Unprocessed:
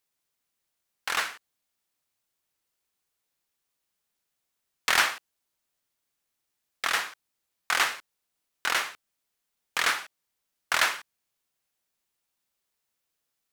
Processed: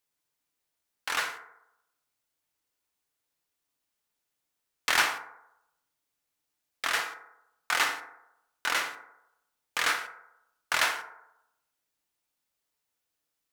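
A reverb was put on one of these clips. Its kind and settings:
feedback delay network reverb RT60 0.84 s, low-frequency decay 0.7×, high-frequency decay 0.35×, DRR 5 dB
level −2.5 dB

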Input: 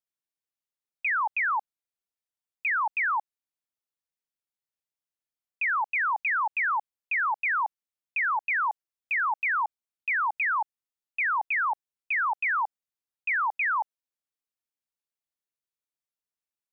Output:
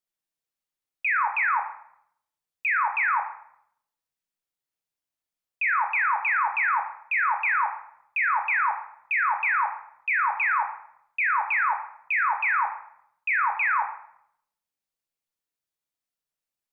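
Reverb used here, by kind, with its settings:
rectangular room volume 180 cubic metres, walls mixed, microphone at 0.59 metres
level +1.5 dB

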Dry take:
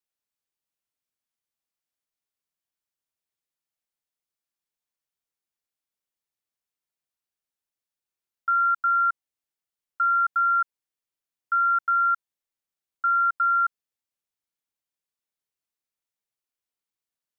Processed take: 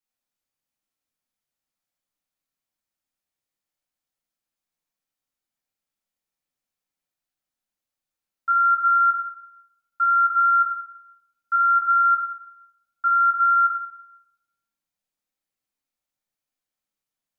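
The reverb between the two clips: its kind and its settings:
rectangular room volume 340 cubic metres, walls mixed, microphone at 2.2 metres
level −3.5 dB

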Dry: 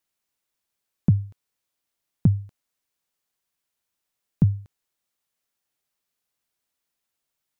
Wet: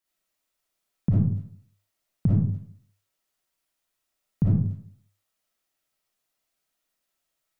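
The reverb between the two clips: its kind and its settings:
comb and all-pass reverb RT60 0.57 s, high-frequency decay 0.5×, pre-delay 15 ms, DRR −7 dB
level −5 dB

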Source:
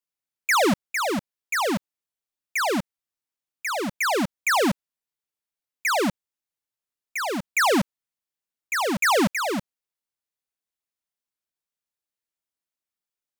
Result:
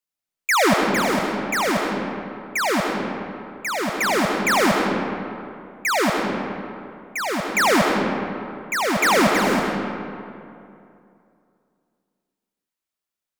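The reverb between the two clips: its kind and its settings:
comb and all-pass reverb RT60 2.6 s, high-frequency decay 0.55×, pre-delay 60 ms, DRR 0.5 dB
level +1.5 dB

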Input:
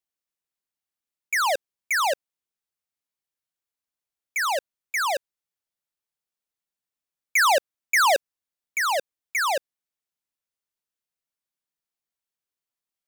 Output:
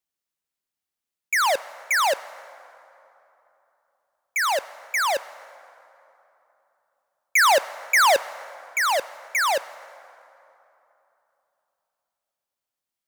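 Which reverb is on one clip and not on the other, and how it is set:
dense smooth reverb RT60 3.2 s, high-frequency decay 0.55×, DRR 16.5 dB
level +2 dB

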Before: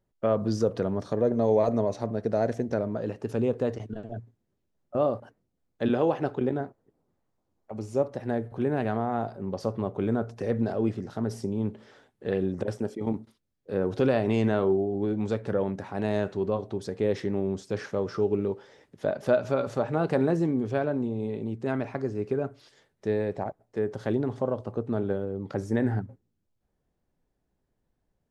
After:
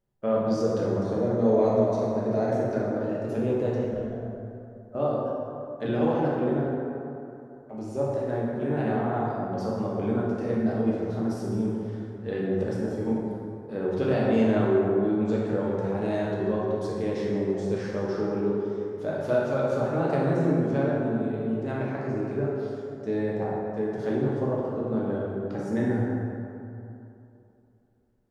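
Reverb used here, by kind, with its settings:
dense smooth reverb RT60 2.8 s, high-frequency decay 0.45×, DRR −5.5 dB
level −5.5 dB

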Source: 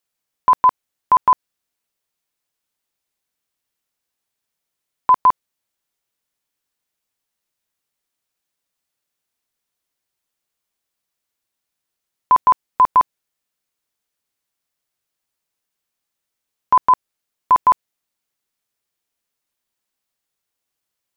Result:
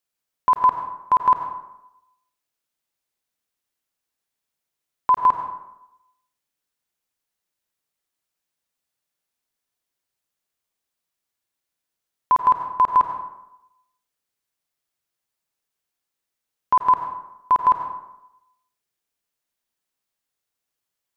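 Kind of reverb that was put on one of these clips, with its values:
dense smooth reverb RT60 0.86 s, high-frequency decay 0.6×, pre-delay 75 ms, DRR 5 dB
level −4 dB

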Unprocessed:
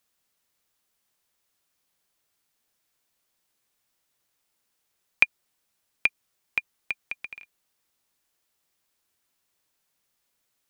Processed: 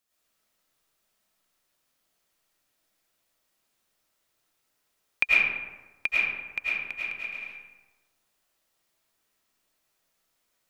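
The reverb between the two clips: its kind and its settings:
comb and all-pass reverb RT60 1.2 s, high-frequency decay 0.5×, pre-delay 65 ms, DRR −8.5 dB
level −6 dB

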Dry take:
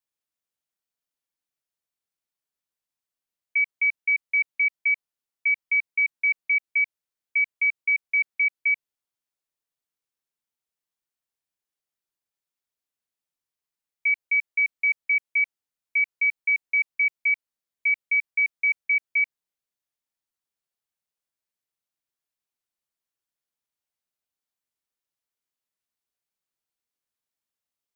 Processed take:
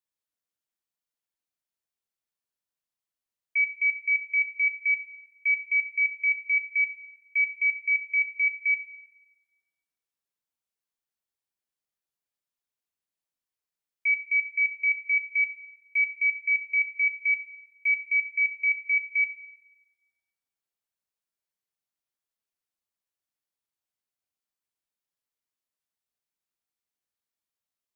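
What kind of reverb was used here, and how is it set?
dense smooth reverb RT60 1.5 s, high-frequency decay 0.6×, DRR 7 dB
level −3.5 dB

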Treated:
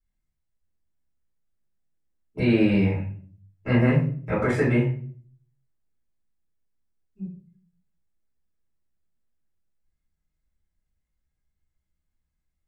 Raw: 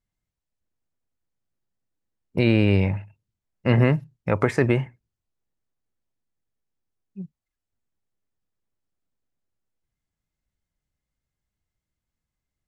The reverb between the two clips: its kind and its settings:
rectangular room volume 41 cubic metres, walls mixed, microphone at 3 metres
level −15.5 dB

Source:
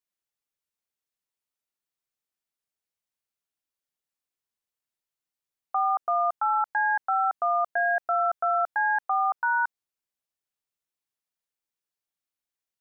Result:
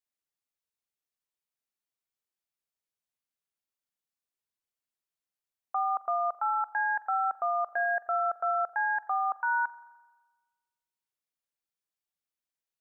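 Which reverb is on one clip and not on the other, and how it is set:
spring reverb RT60 1.3 s, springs 41 ms, chirp 20 ms, DRR 16 dB
level −4 dB

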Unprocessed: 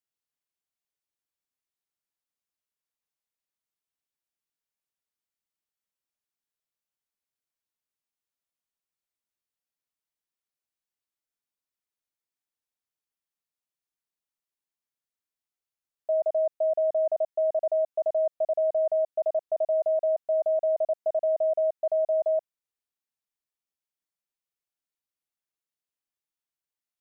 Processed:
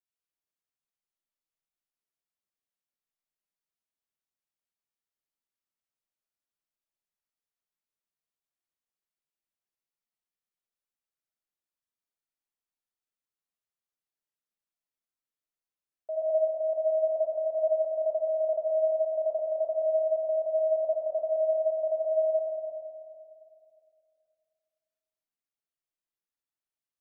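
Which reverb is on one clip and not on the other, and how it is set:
comb and all-pass reverb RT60 2.4 s, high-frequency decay 0.3×, pre-delay 30 ms, DRR −3 dB
level −8.5 dB

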